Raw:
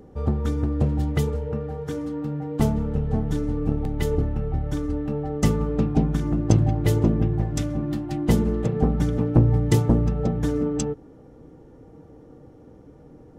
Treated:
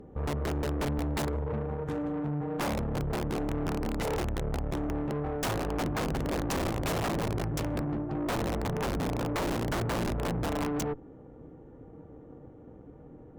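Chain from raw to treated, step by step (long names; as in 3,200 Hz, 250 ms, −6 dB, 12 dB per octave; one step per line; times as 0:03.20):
adaptive Wiener filter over 9 samples
0:07.85–0:09.99: head-to-tape spacing loss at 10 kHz 27 dB
wrap-around overflow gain 17 dB
tube saturation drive 31 dB, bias 0.75
level +2.5 dB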